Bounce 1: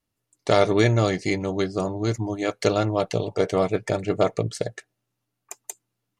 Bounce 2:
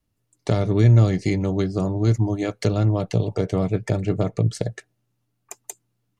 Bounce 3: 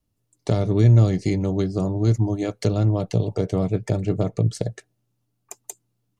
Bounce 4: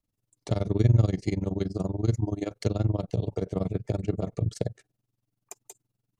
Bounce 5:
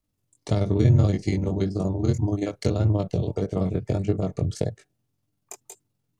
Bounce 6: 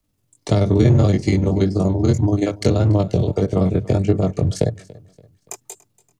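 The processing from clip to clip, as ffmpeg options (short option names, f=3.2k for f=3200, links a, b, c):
-filter_complex "[0:a]lowshelf=f=250:g=10.5,acrossover=split=260[a][b];[b]acompressor=threshold=-23dB:ratio=10[c];[a][c]amix=inputs=2:normalize=0"
-af "equalizer=f=1.8k:t=o:w=1.6:g=-5"
-af "tremolo=f=21:d=0.919,volume=-2.5dB"
-af "flanger=delay=19.5:depth=3.3:speed=1.7,volume=7dB"
-filter_complex "[0:a]acrossover=split=160|1200[a][b][c];[a]asoftclip=type=hard:threshold=-23.5dB[d];[d][b][c]amix=inputs=3:normalize=0,aecho=1:1:286|572|858:0.0794|0.0318|0.0127,volume=7.5dB"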